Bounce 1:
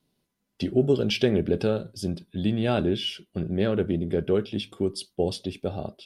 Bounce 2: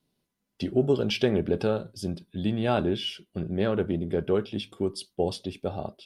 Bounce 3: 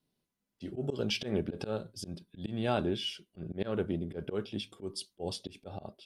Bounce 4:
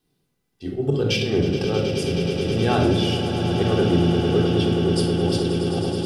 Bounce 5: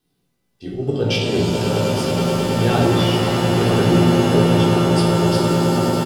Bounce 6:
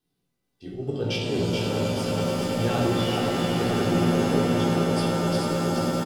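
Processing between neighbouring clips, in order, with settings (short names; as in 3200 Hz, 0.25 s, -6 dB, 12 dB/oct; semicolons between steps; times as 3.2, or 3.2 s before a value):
dynamic EQ 970 Hz, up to +7 dB, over -41 dBFS, Q 1.3; gain -2.5 dB
dynamic EQ 7000 Hz, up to +5 dB, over -51 dBFS, Q 0.73; auto swell 0.104 s; gain -5.5 dB
swelling echo 0.106 s, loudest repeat 8, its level -12 dB; shoebox room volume 2800 m³, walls furnished, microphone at 3.7 m; gain +7 dB
doubler 17 ms -5 dB; shimmer reverb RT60 4 s, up +7 st, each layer -2 dB, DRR 5 dB
echo 0.428 s -4 dB; gain -8 dB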